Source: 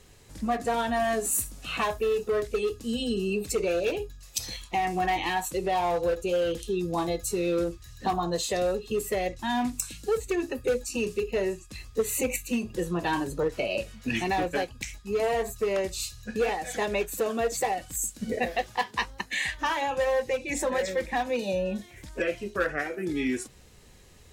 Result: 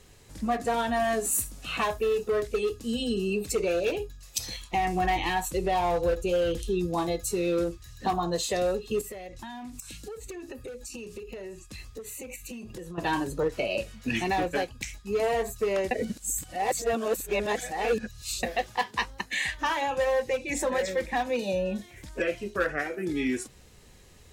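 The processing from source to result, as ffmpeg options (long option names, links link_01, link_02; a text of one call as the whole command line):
ffmpeg -i in.wav -filter_complex "[0:a]asettb=1/sr,asplit=3[link_01][link_02][link_03];[link_01]atrim=end=4.734[link_04];[link_02]atrim=start=4.73:end=6.87,asetpts=PTS-STARTPTS,afade=type=in:duration=0.004:curve=qsin,afade=type=out:start_time=2.136:duration=0.004:curve=qsin,lowshelf=frequency=96:gain=10.5[link_05];[link_03]atrim=start=6.866[link_06];[link_04][link_05]acrossfade=duration=0.004:curve1=hsin:curve2=qsin[link_07];[link_07][link_06]acrossfade=duration=0.004:curve1=qsin:curve2=hsin,asettb=1/sr,asplit=3[link_08][link_09][link_10];[link_08]atrim=end=9.014[link_11];[link_09]atrim=start=9.01:end=12.98,asetpts=PTS-STARTPTS,afade=type=in:duration=0.004:curve=qsin,afade=type=out:start_time=3.966:duration=0.004:curve=qsin,acompressor=threshold=-36dB:ratio=12:attack=3.2:release=140:knee=1:detection=peak[link_12];[link_10]atrim=start=12.976[link_13];[link_11][link_12]acrossfade=duration=0.004:curve1=hsin:curve2=qsin[link_14];[link_14][link_13]acrossfade=duration=0.004:curve1=qsin:curve2=hsin,asplit=3[link_15][link_16][link_17];[link_15]atrim=end=15.912[link_18];[link_16]atrim=start=15.908:end=18.432,asetpts=PTS-STARTPTS,areverse[link_19];[link_17]atrim=start=18.428[link_20];[link_18][link_19]acrossfade=duration=0.004:curve1=hsin:curve2=hsin[link_21];[link_21][link_20]acrossfade=duration=0.004:curve1=hsin:curve2=hsin" out.wav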